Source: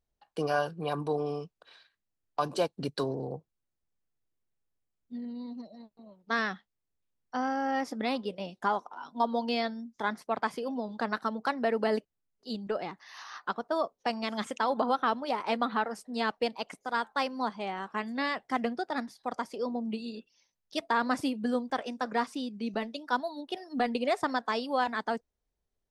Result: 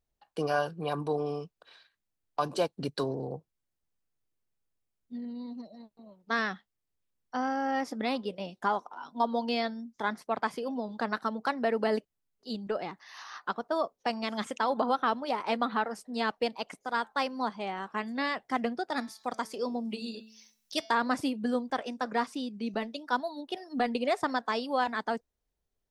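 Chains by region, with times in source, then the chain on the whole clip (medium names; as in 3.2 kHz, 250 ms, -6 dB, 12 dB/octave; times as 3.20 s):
18.89–20.95 s: treble shelf 3.8 kHz +8.5 dB + de-hum 219.9 Hz, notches 33 + tape noise reduction on one side only encoder only
whole clip: none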